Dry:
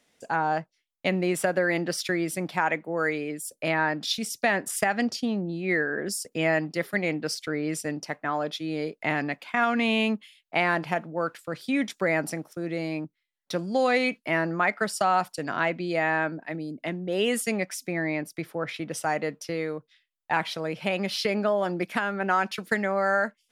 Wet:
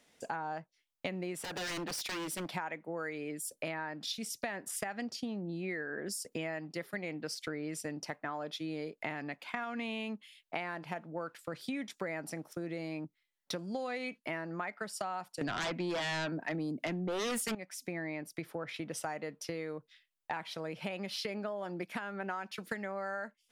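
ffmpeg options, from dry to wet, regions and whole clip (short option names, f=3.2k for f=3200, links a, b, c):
-filter_complex "[0:a]asettb=1/sr,asplit=3[a][b][c];[a]atrim=end=1.444[d];[b]atrim=start=1.44:end=2.54,asetpts=PTS-STARTPTS,afade=t=in:d=0.004:c=qsin,afade=t=out:st=1.096:d=0.004:c=qsin,highpass=f=200:p=1,aeval=exprs='0.0376*(abs(mod(val(0)/0.0376+3,4)-2)-1)':c=same[e];[c]atrim=start=2.536[f];[d][e]acrossfade=d=0.004:c1=hsin:c2=qsin[g];[g][f]acrossfade=d=0.004:c1=qsin:c2=hsin,asettb=1/sr,asplit=3[h][i][j];[h]atrim=end=15.414[k];[i]atrim=start=15.41:end=17.55,asetpts=PTS-STARTPTS,afade=t=in:d=0.004:c=qsin,afade=t=out:st=2.136:d=0.004:c=qsin,highpass=f=83:w=0.5412,highpass=f=83:w=1.3066,aeval=exprs='0.299*sin(PI/2*4.47*val(0)/0.299)':c=same[l];[j]atrim=start=17.546[m];[k][l]acrossfade=d=0.004:c1=hsin:c2=qsin[n];[n][m]acrossfade=d=0.004:c1=qsin:c2=hsin,equalizer=f=910:t=o:w=0.26:g=2,acompressor=threshold=-36dB:ratio=6"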